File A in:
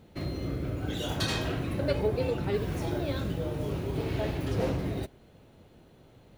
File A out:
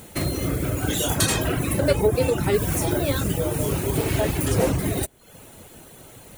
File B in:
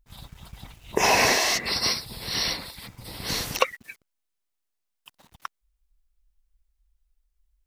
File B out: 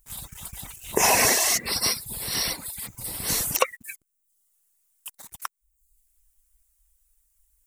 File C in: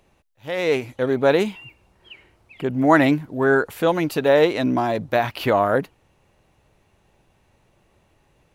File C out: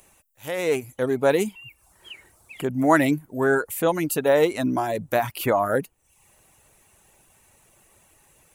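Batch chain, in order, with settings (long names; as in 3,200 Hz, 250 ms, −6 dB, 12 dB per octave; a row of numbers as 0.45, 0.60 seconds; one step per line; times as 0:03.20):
reverb reduction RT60 0.57 s
high shelf with overshoot 6,200 Hz +11 dB, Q 1.5
one half of a high-frequency compander encoder only
loudness normalisation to −23 LKFS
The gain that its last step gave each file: +8.5, +0.5, −2.0 decibels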